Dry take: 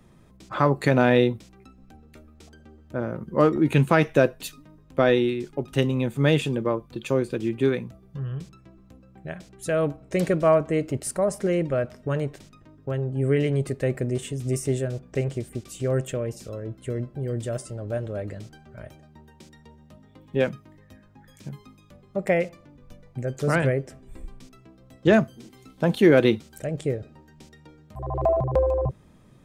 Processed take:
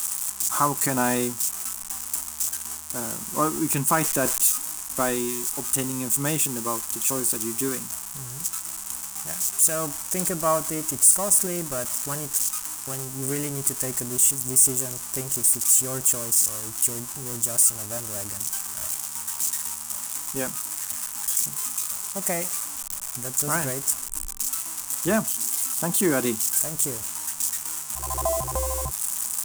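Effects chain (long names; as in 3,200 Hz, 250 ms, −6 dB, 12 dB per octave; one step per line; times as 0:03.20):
spike at every zero crossing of −17 dBFS
octave-band graphic EQ 125/500/1,000/2,000/4,000/8,000 Hz −10/−12/+7/−6/−9/+10 dB
0:03.97–0:04.41: level that may fall only so fast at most 31 dB per second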